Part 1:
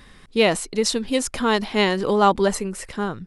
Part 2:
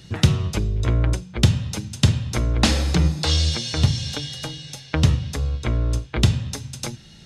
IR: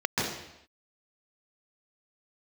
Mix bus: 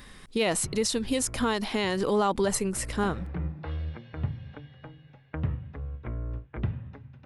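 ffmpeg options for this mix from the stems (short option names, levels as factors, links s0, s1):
-filter_complex "[0:a]highshelf=f=8500:g=8,volume=0.891,asplit=2[s0][s1];[1:a]lowpass=f=2000:w=0.5412,lowpass=f=2000:w=1.3066,adelay=400,volume=0.237[s2];[s1]apad=whole_len=337713[s3];[s2][s3]sidechaincompress=threshold=0.0501:ratio=4:attack=21:release=947[s4];[s0][s4]amix=inputs=2:normalize=0,alimiter=limit=0.158:level=0:latency=1:release=117"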